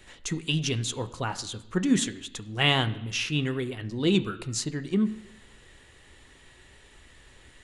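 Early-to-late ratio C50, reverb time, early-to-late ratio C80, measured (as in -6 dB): 15.5 dB, 0.85 s, 17.0 dB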